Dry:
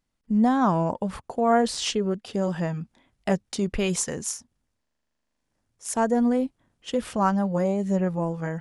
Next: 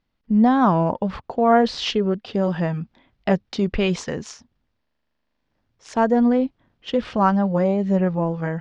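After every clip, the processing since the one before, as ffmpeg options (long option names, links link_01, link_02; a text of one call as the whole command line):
ffmpeg -i in.wav -af "lowpass=frequency=4600:width=0.5412,lowpass=frequency=4600:width=1.3066,volume=4.5dB" out.wav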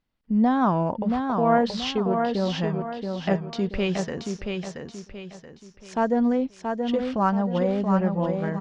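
ffmpeg -i in.wav -af "aecho=1:1:678|1356|2034|2712|3390:0.562|0.208|0.077|0.0285|0.0105,volume=-4.5dB" out.wav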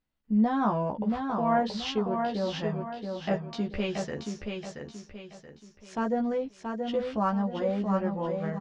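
ffmpeg -i in.wav -filter_complex "[0:a]asplit=2[link_01][link_02];[link_02]adelay=14,volume=-2.5dB[link_03];[link_01][link_03]amix=inputs=2:normalize=0,volume=-6.5dB" out.wav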